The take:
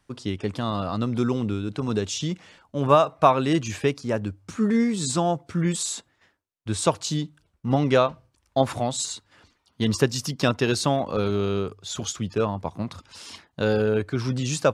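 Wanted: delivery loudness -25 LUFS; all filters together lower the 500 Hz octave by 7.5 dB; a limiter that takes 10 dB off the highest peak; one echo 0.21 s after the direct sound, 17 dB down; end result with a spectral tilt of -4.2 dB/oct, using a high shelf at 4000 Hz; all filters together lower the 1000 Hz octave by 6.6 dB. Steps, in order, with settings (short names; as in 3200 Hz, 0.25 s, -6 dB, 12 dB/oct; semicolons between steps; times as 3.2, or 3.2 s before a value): bell 500 Hz -8 dB; bell 1000 Hz -6.5 dB; high shelf 4000 Hz +7 dB; limiter -19 dBFS; echo 0.21 s -17 dB; gain +4.5 dB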